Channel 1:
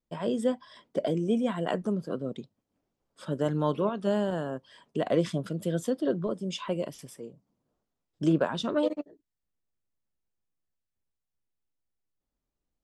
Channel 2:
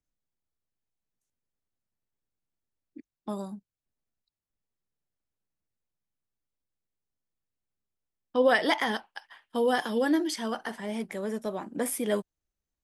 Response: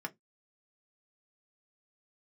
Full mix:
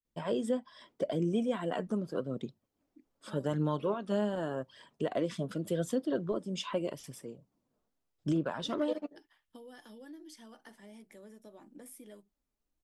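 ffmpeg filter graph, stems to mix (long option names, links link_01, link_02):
-filter_complex "[0:a]aphaser=in_gain=1:out_gain=1:delay=4.9:decay=0.33:speed=0.84:type=triangular,adelay=50,volume=-2dB,asplit=2[link_01][link_02];[link_02]volume=-21.5dB[link_03];[1:a]equalizer=frequency=1200:width=0.44:gain=-9.5,acompressor=threshold=-36dB:ratio=12,volume=-13dB,asplit=2[link_04][link_05];[link_05]volume=-7dB[link_06];[2:a]atrim=start_sample=2205[link_07];[link_03][link_06]amix=inputs=2:normalize=0[link_08];[link_08][link_07]afir=irnorm=-1:irlink=0[link_09];[link_01][link_04][link_09]amix=inputs=3:normalize=0,alimiter=limit=-21.5dB:level=0:latency=1:release=347"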